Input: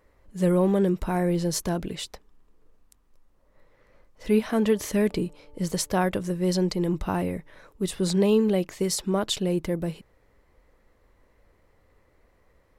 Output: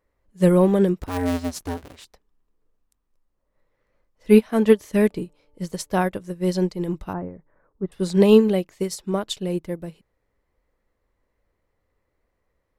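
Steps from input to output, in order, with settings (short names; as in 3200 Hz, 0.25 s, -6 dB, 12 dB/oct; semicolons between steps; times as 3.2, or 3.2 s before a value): 1.01–2.05 cycle switcher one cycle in 2, inverted; 7.13–7.92 LPF 1500 Hz 24 dB/oct; upward expander 2.5:1, over -31 dBFS; gain +9 dB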